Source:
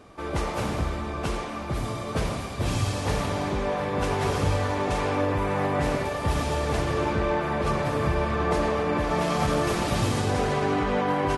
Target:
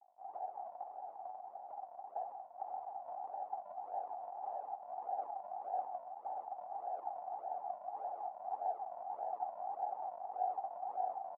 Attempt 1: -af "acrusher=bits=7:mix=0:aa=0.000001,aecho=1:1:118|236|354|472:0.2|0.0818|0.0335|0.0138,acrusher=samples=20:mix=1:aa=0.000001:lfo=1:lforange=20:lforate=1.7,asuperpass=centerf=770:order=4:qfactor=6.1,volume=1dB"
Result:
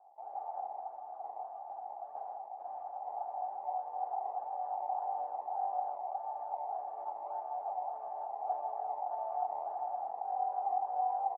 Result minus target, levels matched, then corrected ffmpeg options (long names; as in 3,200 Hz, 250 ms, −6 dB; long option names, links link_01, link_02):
sample-and-hold swept by an LFO: distortion −10 dB
-af "acrusher=bits=7:mix=0:aa=0.000001,aecho=1:1:118|236|354|472:0.2|0.0818|0.0335|0.0138,acrusher=samples=74:mix=1:aa=0.000001:lfo=1:lforange=74:lforate=1.7,asuperpass=centerf=770:order=4:qfactor=6.1,volume=1dB"